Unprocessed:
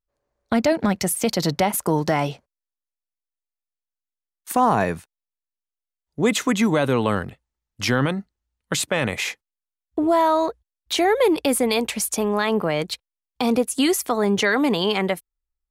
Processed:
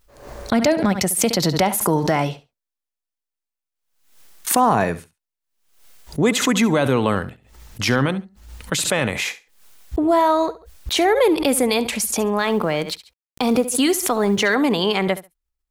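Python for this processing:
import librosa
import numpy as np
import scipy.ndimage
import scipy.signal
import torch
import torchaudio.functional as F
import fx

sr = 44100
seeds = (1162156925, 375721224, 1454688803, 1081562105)

y = fx.law_mismatch(x, sr, coded='A', at=(12.38, 14.54))
y = fx.echo_feedback(y, sr, ms=69, feedback_pct=17, wet_db=-16.0)
y = fx.pre_swell(y, sr, db_per_s=83.0)
y = F.gain(torch.from_numpy(y), 1.5).numpy()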